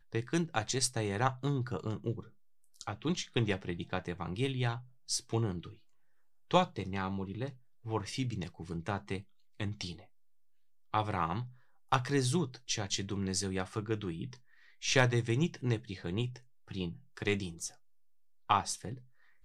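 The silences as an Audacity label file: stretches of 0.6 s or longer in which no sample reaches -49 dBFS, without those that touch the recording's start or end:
5.750000	6.510000	silence
10.040000	10.940000	silence
17.740000	18.500000	silence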